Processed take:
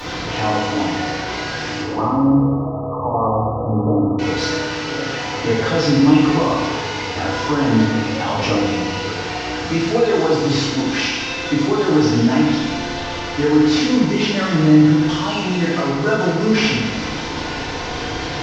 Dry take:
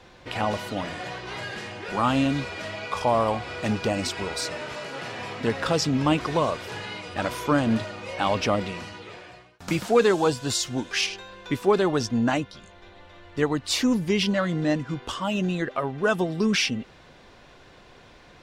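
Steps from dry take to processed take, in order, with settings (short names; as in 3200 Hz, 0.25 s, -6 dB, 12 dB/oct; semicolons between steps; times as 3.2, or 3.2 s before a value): delta modulation 32 kbps, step -27 dBFS; limiter -16 dBFS, peak gain reduction 9 dB; 1.81–4.19 brick-wall FIR low-pass 1300 Hz; FDN reverb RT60 1.4 s, low-frequency decay 1.2×, high-frequency decay 0.75×, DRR -10 dB; gain -2.5 dB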